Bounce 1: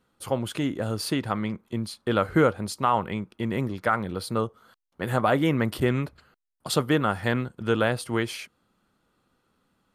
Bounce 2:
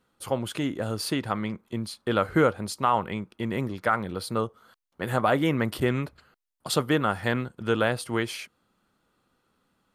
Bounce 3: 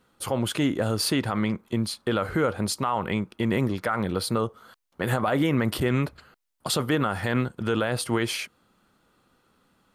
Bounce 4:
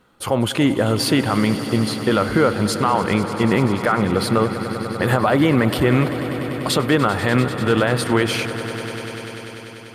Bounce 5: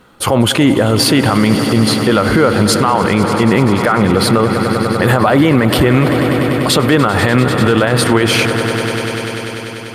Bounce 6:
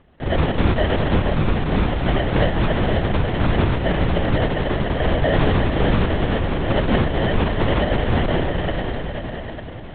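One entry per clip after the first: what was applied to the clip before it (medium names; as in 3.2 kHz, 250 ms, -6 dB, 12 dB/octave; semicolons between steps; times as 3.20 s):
bass shelf 320 Hz -2.5 dB
peak limiter -20.5 dBFS, peak gain reduction 11 dB; trim +6 dB
tone controls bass -1 dB, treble -5 dB; echo with a slow build-up 98 ms, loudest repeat 5, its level -16 dB; trim +7.5 dB
loudness maximiser +12 dB; trim -1 dB
sample-and-hold 36×; LPC vocoder at 8 kHz whisper; trim -6.5 dB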